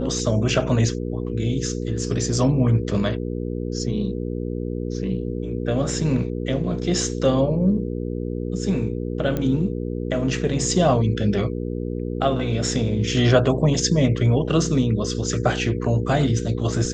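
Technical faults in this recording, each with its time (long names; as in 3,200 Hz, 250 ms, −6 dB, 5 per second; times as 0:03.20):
mains hum 60 Hz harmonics 8 −27 dBFS
0:09.37: click −13 dBFS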